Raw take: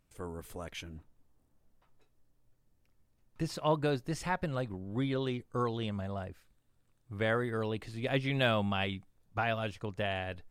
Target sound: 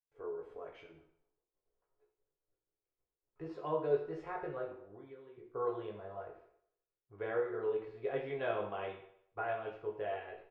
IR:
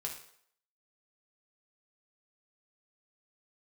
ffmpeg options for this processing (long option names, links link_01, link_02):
-filter_complex "[0:a]lowpass=1600,agate=range=-33dB:threshold=-60dB:ratio=3:detection=peak,lowshelf=frequency=280:width_type=q:width=3:gain=-9,asettb=1/sr,asplit=3[link_01][link_02][link_03];[link_01]atrim=end=4.664[link_04];[link_02]atrim=start=4.66:end=5.38,asetpts=PTS-STARTPTS,afade=type=in:duration=0.004:curve=qsin,afade=type=out:start_time=0.716:duration=0.004:curve=qsin,acompressor=threshold=-43dB:ratio=12[link_05];[link_03]atrim=start=5.376[link_06];[link_04][link_05]acrossfade=duration=0.004:curve1=hsin:curve2=qsin[link_07];[link_07][link_06]acrossfade=duration=0.004:curve1=qsin:curve2=hsin,asplit=2[link_08][link_09];[link_09]adelay=19,volume=-5.5dB[link_10];[link_08][link_10]amix=inputs=2:normalize=0[link_11];[1:a]atrim=start_sample=2205,asetrate=42336,aresample=44100[link_12];[link_11][link_12]afir=irnorm=-1:irlink=0,volume=-7dB"